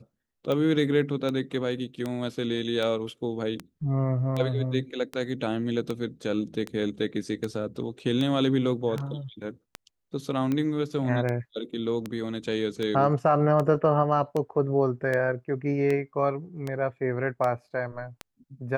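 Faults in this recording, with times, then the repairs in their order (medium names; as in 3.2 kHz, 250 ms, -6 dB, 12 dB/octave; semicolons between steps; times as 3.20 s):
tick 78 rpm -17 dBFS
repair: de-click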